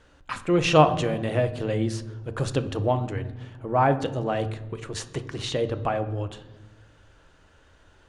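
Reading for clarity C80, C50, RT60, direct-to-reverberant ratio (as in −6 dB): 16.0 dB, 13.0 dB, 1.2 s, 9.0 dB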